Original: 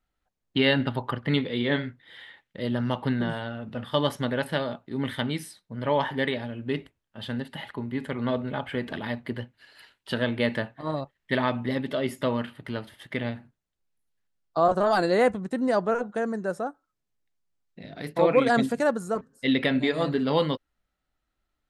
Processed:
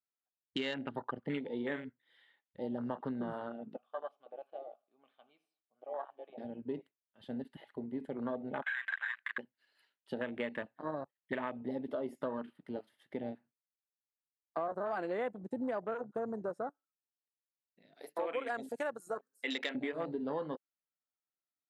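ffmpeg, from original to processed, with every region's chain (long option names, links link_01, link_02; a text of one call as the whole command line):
ffmpeg -i in.wav -filter_complex "[0:a]asettb=1/sr,asplit=3[link_01][link_02][link_03];[link_01]atrim=end=3.764[link_04];[link_02]atrim=start=3.76:end=6.38,asetpts=PTS-STARTPTS,afade=type=in:duration=0.004:curve=qsin,afade=type=out:start_time=2.616:duration=0.004:curve=qsin,asplit=3[link_05][link_06][link_07];[link_05]bandpass=frequency=730:width_type=q:width=8,volume=0dB[link_08];[link_06]bandpass=frequency=1090:width_type=q:width=8,volume=-6dB[link_09];[link_07]bandpass=frequency=2440:width_type=q:width=8,volume=-9dB[link_10];[link_08][link_09][link_10]amix=inputs=3:normalize=0,aecho=1:1:81|162|243:0.112|0.0471|0.0198,atrim=end_sample=115542[link_11];[link_03]atrim=start=6.376[link_12];[link_04][link_11]acrossfade=duration=0.004:curve1=hsin:curve2=qsin[link_13];[link_13][link_12]acrossfade=duration=0.004:curve1=qsin:curve2=hsin,asettb=1/sr,asplit=3[link_14][link_15][link_16];[link_14]atrim=end=8.624[link_17];[link_15]atrim=start=8.62:end=9.38,asetpts=PTS-STARTPTS,afade=type=in:duration=0.004:curve=qsin,afade=type=out:start_time=0.756:duration=0.004:curve=qsin,highpass=frequency=1600:width_type=q:width=12,highshelf=frequency=2100:gain=4.5,acompressor=threshold=-25dB:ratio=2:attack=3.2:release=140:knee=1:detection=peak[link_18];[link_16]atrim=start=9.376[link_19];[link_17][link_18]acrossfade=duration=0.004:curve1=hsin:curve2=qsin[link_20];[link_20][link_19]acrossfade=duration=0.004:curve1=qsin:curve2=hsin,asettb=1/sr,asplit=3[link_21][link_22][link_23];[link_21]atrim=end=17.944[link_24];[link_22]atrim=start=17.94:end=19.75,asetpts=PTS-STARTPTS,afade=type=in:duration=0.004:curve=qsin,afade=type=out:start_time=1.806:duration=0.004:curve=qsin,highpass=frequency=260:poles=1,aemphasis=mode=production:type=bsi[link_25];[link_23]atrim=start=19.746[link_26];[link_24][link_25]acrossfade=duration=0.004:curve1=hsin:curve2=qsin[link_27];[link_27][link_26]acrossfade=duration=0.004:curve1=qsin:curve2=hsin,highpass=240,afwtdn=0.0251,acompressor=threshold=-29dB:ratio=6,volume=-4.5dB" out.wav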